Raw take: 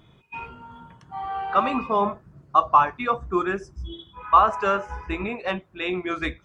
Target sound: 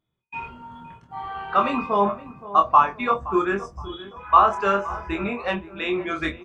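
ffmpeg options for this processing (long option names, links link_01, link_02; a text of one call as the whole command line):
ffmpeg -i in.wav -filter_complex "[0:a]agate=range=-26dB:threshold=-49dB:ratio=16:detection=peak,asplit=2[link_01][link_02];[link_02]adelay=25,volume=-5dB[link_03];[link_01][link_03]amix=inputs=2:normalize=0,asplit=2[link_04][link_05];[link_05]adelay=520,lowpass=frequency=1300:poles=1,volume=-15dB,asplit=2[link_06][link_07];[link_07]adelay=520,lowpass=frequency=1300:poles=1,volume=0.45,asplit=2[link_08][link_09];[link_09]adelay=520,lowpass=frequency=1300:poles=1,volume=0.45,asplit=2[link_10][link_11];[link_11]adelay=520,lowpass=frequency=1300:poles=1,volume=0.45[link_12];[link_06][link_08][link_10][link_12]amix=inputs=4:normalize=0[link_13];[link_04][link_13]amix=inputs=2:normalize=0" out.wav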